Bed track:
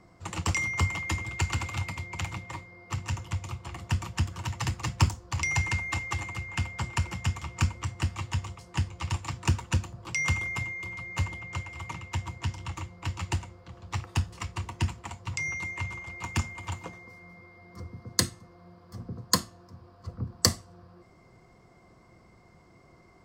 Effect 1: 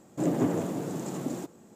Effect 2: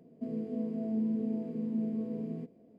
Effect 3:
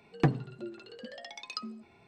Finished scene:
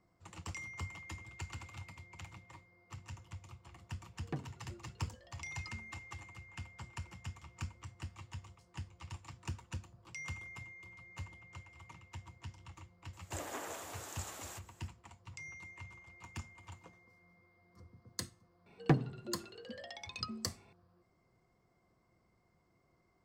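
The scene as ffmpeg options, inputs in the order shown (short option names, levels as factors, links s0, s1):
-filter_complex "[3:a]asplit=2[s0][s1];[0:a]volume=0.15[s2];[1:a]highpass=1200[s3];[s0]atrim=end=2.07,asetpts=PTS-STARTPTS,volume=0.168,afade=t=in:d=0.004:c=hsin,afade=t=out:st=2.066:d=0.004:c=hsin,adelay=180369S[s4];[s3]atrim=end=1.75,asetpts=PTS-STARTPTS,volume=0.944,afade=t=in:d=0.004:c=hsin,afade=t=out:st=1.746:d=0.004:c=hsin,adelay=13130[s5];[s1]atrim=end=2.07,asetpts=PTS-STARTPTS,volume=0.708,afade=t=in:d=0.004:c=hsin,afade=t=out:st=2.066:d=0.004:c=hsin,adelay=18660[s6];[s2][s4][s5][s6]amix=inputs=4:normalize=0"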